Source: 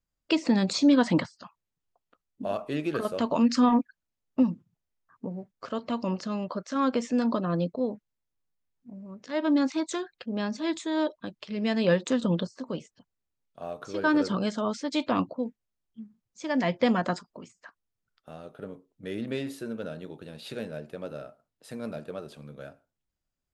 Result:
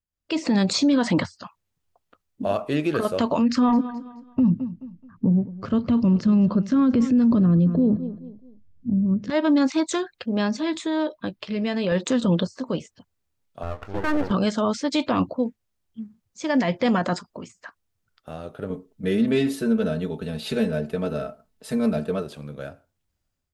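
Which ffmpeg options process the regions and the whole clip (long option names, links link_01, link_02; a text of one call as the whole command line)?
ffmpeg -i in.wav -filter_complex "[0:a]asettb=1/sr,asplit=3[link_01][link_02][link_03];[link_01]atrim=end=3.414[link_04];[link_02]atrim=start=3.41:end=9.3,asetpts=PTS-STARTPTS,afade=type=in:duration=0.004:curve=qsin,afade=type=out:start_time=5.886:duration=0.004:curve=qsin,asubboost=boost=10.5:cutoff=240,lowpass=frequency=2700:poles=1,aecho=1:1:214|428|642:0.119|0.038|0.0122,atrim=end_sample=259749[link_05];[link_03]atrim=start=9.296[link_06];[link_04][link_05]acrossfade=duration=0.004:curve1=hsin:curve2=qsin[link_07];[link_07][link_06]acrossfade=duration=0.004:curve1=qsin:curve2=hsin,asettb=1/sr,asplit=3[link_08][link_09][link_10];[link_08]atrim=end=10.614[link_11];[link_09]atrim=start=10.61:end=11.92,asetpts=PTS-STARTPTS,afade=type=in:duration=0.004:curve=qsin,afade=type=out:start_time=1.306:duration=0.004:curve=qsin,equalizer=frequency=6800:width=1.4:gain=-5.5,asplit=2[link_12][link_13];[link_13]adelay=16,volume=-13.5dB[link_14];[link_12][link_14]amix=inputs=2:normalize=0,atrim=end_sample=57771,acompressor=threshold=-29dB:ratio=3:attack=3.2:release=140:knee=1:detection=peak[link_15];[link_10]atrim=start=11.916[link_16];[link_11][link_15]acrossfade=duration=0.004:curve1=hsin:curve2=qsin[link_17];[link_17][link_16]acrossfade=duration=0.004:curve1=qsin:curve2=hsin,asettb=1/sr,asplit=3[link_18][link_19][link_20];[link_18]atrim=end=13.634[link_21];[link_19]atrim=start=13.63:end=14.31,asetpts=PTS-STARTPTS,afade=type=in:duration=0.004:curve=qsin,afade=type=out:start_time=0.676:duration=0.004:curve=qsin,lowpass=1800,aeval=exprs='max(val(0),0)':channel_layout=same[link_22];[link_20]atrim=start=14.306[link_23];[link_21][link_22]acrossfade=duration=0.004:curve1=hsin:curve2=qsin[link_24];[link_24][link_23]acrossfade=duration=0.004:curve1=qsin:curve2=hsin,asettb=1/sr,asplit=3[link_25][link_26][link_27];[link_25]atrim=end=18.704[link_28];[link_26]atrim=start=18.7:end=22.23,asetpts=PTS-STARTPTS,afade=type=in:duration=0.004:curve=qsin,afade=type=out:start_time=3.526:duration=0.004:curve=qsin,lowshelf=frequency=240:gain=6.5,aecho=1:1:4.6:0.88,atrim=end_sample=155673[link_29];[link_27]atrim=start=22.226[link_30];[link_28][link_29]acrossfade=duration=0.004:curve1=hsin:curve2=qsin[link_31];[link_31][link_30]acrossfade=duration=0.004:curve1=qsin:curve2=hsin,alimiter=limit=-19.5dB:level=0:latency=1:release=25,equalizer=frequency=87:width=2.8:gain=9,dynaudnorm=framelen=120:gausssize=5:maxgain=16dB,volume=-8.5dB" out.wav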